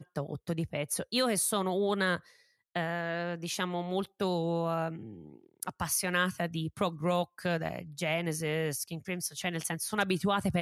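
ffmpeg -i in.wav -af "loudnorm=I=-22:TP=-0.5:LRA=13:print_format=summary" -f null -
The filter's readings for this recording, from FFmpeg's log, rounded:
Input Integrated:    -32.2 LUFS
Input True Peak:     -14.6 dBTP
Input LRA:             1.6 LU
Input Threshold:     -42.4 LUFS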